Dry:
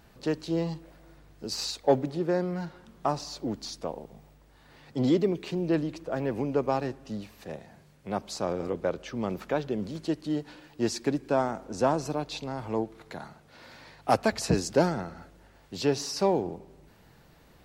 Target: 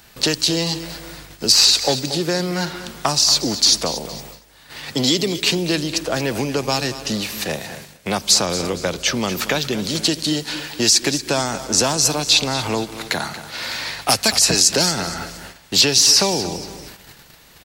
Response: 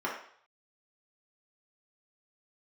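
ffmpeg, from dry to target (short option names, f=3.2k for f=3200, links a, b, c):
-filter_complex "[0:a]acrossover=split=210|3300[a][b][c];[a]acompressor=threshold=-42dB:ratio=4[d];[b]acompressor=threshold=-38dB:ratio=4[e];[c]acompressor=threshold=-40dB:ratio=4[f];[d][e][f]amix=inputs=3:normalize=0,aecho=1:1:232|464|696:0.211|0.0761|0.0274,agate=range=-11dB:threshold=-54dB:ratio=16:detection=peak,tiltshelf=f=1.5k:g=-8,alimiter=level_in=22.5dB:limit=-1dB:release=50:level=0:latency=1,volume=-1dB"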